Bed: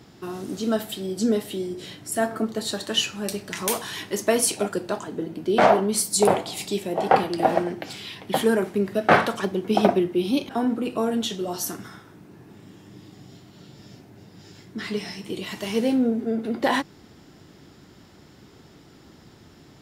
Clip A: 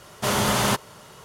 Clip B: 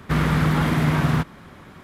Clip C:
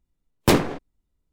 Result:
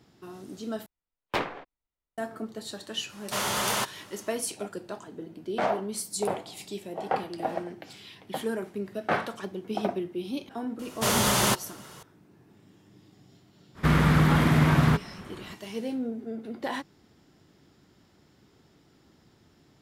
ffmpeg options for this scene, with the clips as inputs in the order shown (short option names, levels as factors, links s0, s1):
-filter_complex "[1:a]asplit=2[s0][s1];[0:a]volume=0.299[s2];[3:a]acrossover=split=540 3800:gain=0.178 1 0.112[s3][s4][s5];[s3][s4][s5]amix=inputs=3:normalize=0[s6];[s0]lowshelf=f=400:g=-11[s7];[s1]highshelf=f=4300:g=5.5[s8];[s2]asplit=2[s9][s10];[s9]atrim=end=0.864[s11];[s6]atrim=end=1.32,asetpts=PTS-STARTPTS,volume=0.531[s12];[s10]atrim=start=2.176[s13];[s7]atrim=end=1.24,asetpts=PTS-STARTPTS,volume=0.631,afade=t=in:d=0.004:c=hsin,afade=t=out:st=1.236:d=0.004:c=hsin,adelay=136269S[s14];[s8]atrim=end=1.24,asetpts=PTS-STARTPTS,volume=0.708,afade=t=in:d=0.004:c=hsin,afade=t=out:st=1.236:d=0.004:c=hsin,adelay=10790[s15];[2:a]atrim=end=1.83,asetpts=PTS-STARTPTS,volume=0.891,afade=t=in:d=0.05,afade=t=out:st=1.78:d=0.05,adelay=13740[s16];[s11][s12]acrossfade=d=0.004:c1=hsin:c2=hsin[s17];[s17][s13]acrossfade=d=0.004:c1=hsin:c2=hsin[s18];[s18][s14][s15][s16]amix=inputs=4:normalize=0"